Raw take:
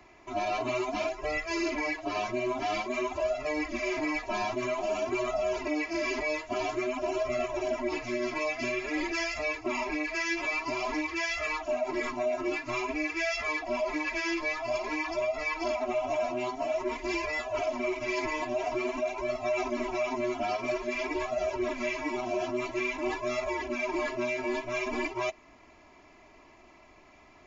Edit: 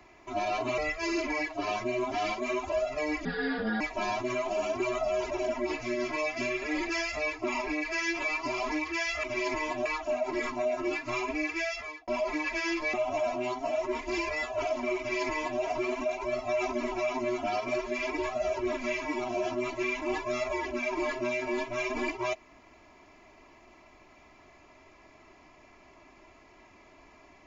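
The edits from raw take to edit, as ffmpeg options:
-filter_complex "[0:a]asplit=9[a][b][c][d][e][f][g][h][i];[a]atrim=end=0.782[j];[b]atrim=start=1.258:end=3.734[k];[c]atrim=start=3.73:end=4.13,asetpts=PTS-STARTPTS,asetrate=31752,aresample=44100[l];[d]atrim=start=4.126:end=5.632[m];[e]atrim=start=7.528:end=11.462[n];[f]atrim=start=17.948:end=18.572[o];[g]atrim=start=11.458:end=13.68,asetpts=PTS-STARTPTS,afade=t=out:st=1.682:d=0.54[p];[h]atrim=start=13.68:end=14.542,asetpts=PTS-STARTPTS,afade=t=in:d=0.004:c=hsin[q];[i]atrim=start=15.898[r];[j][k]acrossfade=d=0.004:c1=hsin:c2=hsin[s];[s][l]acrossfade=d=0.004:c1=hsin:c2=hsin[t];[t][m]acrossfade=d=0.004:c1=hsin:c2=hsin[u];[u][n]acrossfade=d=0.004:c1=hsin:c2=hsin[v];[v][o]acrossfade=d=0.004:c1=hsin:c2=hsin[w];[p][q]concat=n=2:v=0:a=1[x];[w][x]acrossfade=d=0.004:c1=hsin:c2=hsin[y];[y][r]acrossfade=d=0.004:c1=hsin:c2=hsin"

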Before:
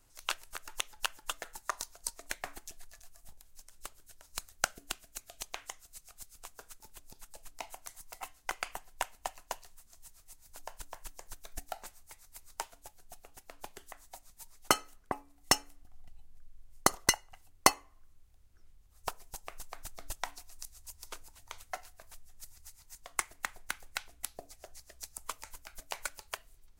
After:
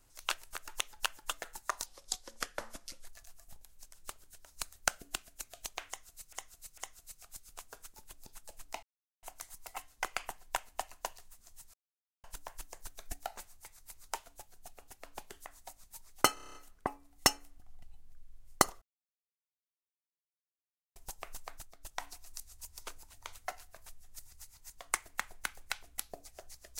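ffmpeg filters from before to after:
-filter_complex "[0:a]asplit=19[a][b][c][d][e][f][g][h][i][j][k][l][m][n][o][p][q][r][s];[a]atrim=end=1.864[t];[b]atrim=start=1.86:end=2.81,asetpts=PTS-STARTPTS,asetrate=35280,aresample=44100[u];[c]atrim=start=2.806:end=6.092[v];[d]atrim=start=5.638:end=6.092[w];[e]atrim=start=5.638:end=7.69,asetpts=PTS-STARTPTS,afade=t=out:st=2.048:d=0.004:c=hsin,apad=pad_dur=0.4[x];[f]atrim=start=7.69:end=10.2,asetpts=PTS-STARTPTS,afade=t=in:d=0.004:c=hsin,afade=t=out:st=2.506:d=0.004:c=hsin[y];[g]atrim=start=10.2:end=10.7,asetpts=PTS-STARTPTS,volume=0[z];[h]atrim=start=10.7:end=14.832,asetpts=PTS-STARTPTS,afade=t=in:d=0.004:c=hsin[aa];[i]atrim=start=14.798:end=14.832[ab];[j]atrim=start=14.798:end=14.832[ac];[k]atrim=start=14.798:end=14.832[ad];[l]atrim=start=14.798:end=14.832[ae];[m]atrim=start=14.798:end=14.832[af];[n]atrim=start=14.798:end=14.832[ag];[o]atrim=start=14.798:end=17.07,asetpts=PTS-STARTPTS,afade=t=out:st=2.268:d=0.004:c=hsin[ah];[p]atrim=start=17.07:end=19.21,asetpts=PTS-STARTPTS,volume=0[ai];[q]atrim=start=19.21:end=20.02,asetpts=PTS-STARTPTS,afade=t=in:d=0.004:c=hsin,afade=t=out:st=0.51:d=0.3:silence=0.211349[aj];[r]atrim=start=20.02:end=20.04,asetpts=PTS-STARTPTS,volume=-13.5dB[ak];[s]atrim=start=20.04,asetpts=PTS-STARTPTS,afade=t=in:d=0.3:silence=0.211349[al];[t][u]acrossfade=d=0.004:c1=hsin:c2=hsin[am];[am][v]acrossfade=d=0.004:c1=hsin:c2=hsin[an];[an][w]acrossfade=d=0.004:c1=hsin:c2=hsin[ao];[x][y][z][aa]concat=n=4:v=0:a=1[ap];[ao][ap]acrossfade=d=0.004:c1=hsin:c2=hsin[aq];[aq][ab]acrossfade=d=0.004:c1=hsin:c2=hsin[ar];[ar][ac]acrossfade=d=0.004:c1=hsin:c2=hsin[as];[as][ad]acrossfade=d=0.004:c1=hsin:c2=hsin[at];[at][ae]acrossfade=d=0.004:c1=hsin:c2=hsin[au];[au][af]acrossfade=d=0.004:c1=hsin:c2=hsin[av];[av][ag]acrossfade=d=0.004:c1=hsin:c2=hsin[aw];[ah][ai][aj][ak][al]concat=n=5:v=0:a=1[ax];[aw][ax]acrossfade=d=0.004:c1=hsin:c2=hsin"

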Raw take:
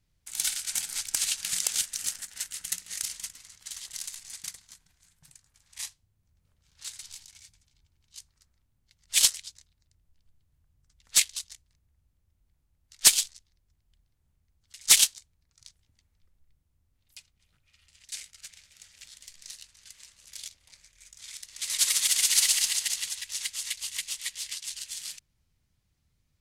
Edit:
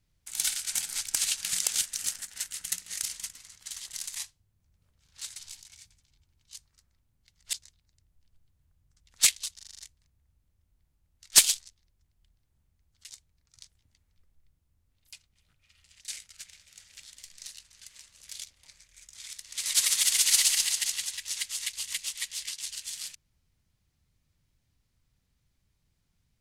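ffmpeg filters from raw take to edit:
-filter_complex "[0:a]asplit=10[a][b][c][d][e][f][g][h][i][j];[a]atrim=end=4.162[k];[b]atrim=start=5.788:end=9.162[l];[c]atrim=start=9.458:end=11.522[m];[d]atrim=start=11.478:end=11.522[n];[e]atrim=start=11.478:end=11.522[o];[f]atrim=start=11.478:end=11.522[p];[g]atrim=start=11.478:end=11.522[q];[h]atrim=start=11.478:end=11.522[r];[i]atrim=start=11.478:end=14.792[s];[j]atrim=start=15.138[t];[k][l]acrossfade=d=0.004:c1=hsin:c2=hsin[u];[u][m]acrossfade=d=0.004:c1=hsin:c2=hsin[v];[v][n]acrossfade=d=0.004:c1=hsin:c2=hsin[w];[w][o]acrossfade=d=0.004:c1=hsin:c2=hsin[x];[x][p]acrossfade=d=0.004:c1=hsin:c2=hsin[y];[y][q]acrossfade=d=0.004:c1=hsin:c2=hsin[z];[z][r]acrossfade=d=0.004:c1=hsin:c2=hsin[aa];[aa][s]acrossfade=d=0.004:c1=hsin:c2=hsin[ab];[ab][t]acrossfade=d=0.004:c1=hsin:c2=hsin"

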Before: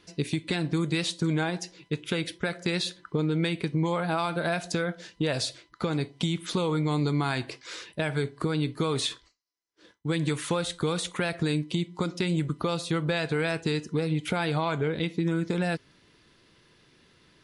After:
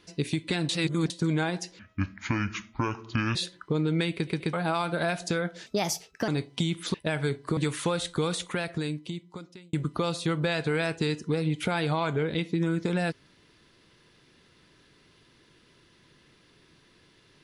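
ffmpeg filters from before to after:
-filter_complex "[0:a]asplit=13[a][b][c][d][e][f][g][h][i][j][k][l][m];[a]atrim=end=0.692[n];[b]atrim=start=0.688:end=1.102,asetpts=PTS-STARTPTS,areverse[o];[c]atrim=start=1.098:end=1.794[p];[d]atrim=start=1.79:end=2.79,asetpts=PTS-STARTPTS,asetrate=28224,aresample=44100,atrim=end_sample=68906,asetpts=PTS-STARTPTS[q];[e]atrim=start=2.786:end=3.712[r];[f]atrim=start=3.578:end=3.712[s];[g]atrim=start=3.578:end=3.712[t];[h]atrim=start=3.968:end=5.104[u];[i]atrim=start=5.1:end=5.91,asetpts=PTS-STARTPTS,asetrate=57771,aresample=44100[v];[j]atrim=start=5.906:end=6.572[w];[k]atrim=start=7.868:end=8.502[x];[l]atrim=start=10.218:end=12.38,asetpts=PTS-STARTPTS,afade=t=out:st=0.692:d=1.47[y];[m]atrim=start=12.38,asetpts=PTS-STARTPTS,afade=t=in:d=0.004:c=hsin[z];[n][o]acrossfade=d=0.004:c1=hsin:c2=hsin[aa];[aa][p]acrossfade=d=0.004:c1=hsin:c2=hsin[ab];[ab][q]acrossfade=d=0.004:c1=hsin:c2=hsin[ac];[ac][r]acrossfade=d=0.004:c1=hsin:c2=hsin[ad];[ad][s]acrossfade=d=0.004:c1=hsin:c2=hsin[ae];[ae][t]acrossfade=d=0.004:c1=hsin:c2=hsin[af];[af][u]acrossfade=d=0.004:c1=hsin:c2=hsin[ag];[ag][v]acrossfade=d=0.004:c1=hsin:c2=hsin[ah];[ah][w]acrossfade=d=0.004:c1=hsin:c2=hsin[ai];[ai][x]acrossfade=d=0.004:c1=hsin:c2=hsin[aj];[y][z]concat=n=2:v=0:a=1[ak];[aj][ak]acrossfade=d=0.004:c1=hsin:c2=hsin"

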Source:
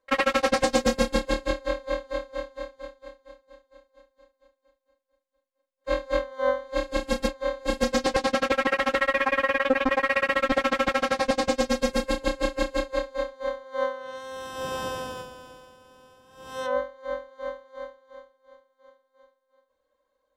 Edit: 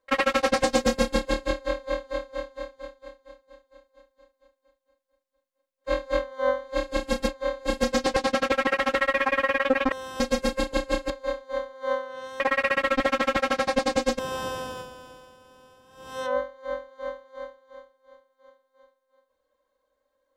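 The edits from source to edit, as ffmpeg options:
-filter_complex "[0:a]asplit=6[a][b][c][d][e][f];[a]atrim=end=9.922[g];[b]atrim=start=14.308:end=14.592[h];[c]atrim=start=11.708:end=12.612[i];[d]atrim=start=13.008:end=14.312[j];[e]atrim=start=9.918:end=11.712[k];[f]atrim=start=14.588[l];[g][h]acrossfade=d=0.004:c1=hsin:c2=hsin[m];[m][i]acrossfade=d=0.004:c1=hsin:c2=hsin[n];[n][j]acrossfade=d=0.004:c1=hsin:c2=hsin[o];[o][k]acrossfade=d=0.004:c1=hsin:c2=hsin[p];[p][l]acrossfade=d=0.004:c1=hsin:c2=hsin"

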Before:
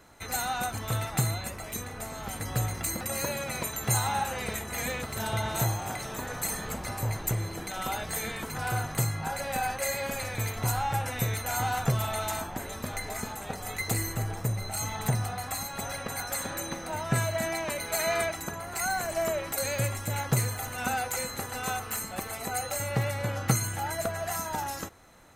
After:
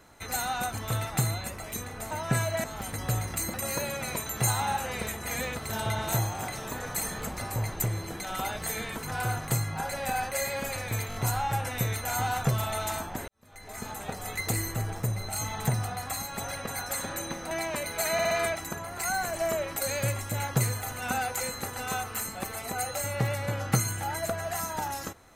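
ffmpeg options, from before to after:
-filter_complex "[0:a]asplit=11[a][b][c][d][e][f][g][h][i][j][k];[a]atrim=end=2.112[l];[b]atrim=start=16.918:end=17.452[m];[c]atrim=start=2.108:end=10.582[n];[d]atrim=start=10.558:end=10.582[o];[e]atrim=start=10.558:end=10.582[p];[f]atrim=start=10.558:end=12.69,asetpts=PTS-STARTPTS,afade=t=out:st=2.128:d=0.004:c=hsin[q];[g]atrim=start=12.69:end=16.922,asetpts=PTS-STARTPTS,afade=t=in:d=0.64:c=qua[r];[h]atrim=start=17.448:end=18.132[s];[i]atrim=start=18.068:end=18.132[t];[j]atrim=start=18.068:end=18.132[u];[k]atrim=start=18.068[v];[l][m]acrossfade=d=0.004:c1=hsin:c2=hsin[w];[w][n]acrossfade=d=0.004:c1=hsin:c2=hsin[x];[x][o]acrossfade=d=0.004:c1=hsin:c2=hsin[y];[y][p]acrossfade=d=0.004:c1=hsin:c2=hsin[z];[q][r]concat=n=2:v=0:a=1[aa];[z][aa]acrossfade=d=0.004:c1=hsin:c2=hsin[ab];[ab][s]acrossfade=d=0.004:c1=hsin:c2=hsin[ac];[ac][t]acrossfade=d=0.004:c1=hsin:c2=hsin[ad];[ad][u]acrossfade=d=0.004:c1=hsin:c2=hsin[ae];[ae][v]acrossfade=d=0.004:c1=hsin:c2=hsin"

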